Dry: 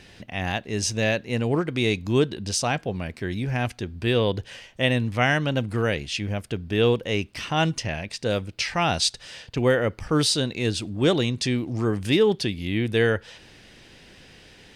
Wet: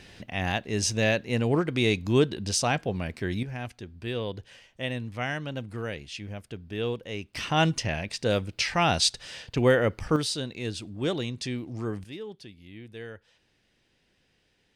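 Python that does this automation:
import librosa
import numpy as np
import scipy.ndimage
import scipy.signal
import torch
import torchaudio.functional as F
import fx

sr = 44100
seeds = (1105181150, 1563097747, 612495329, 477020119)

y = fx.gain(x, sr, db=fx.steps((0.0, -1.0), (3.43, -10.0), (7.34, -0.5), (10.16, -8.0), (12.04, -20.0)))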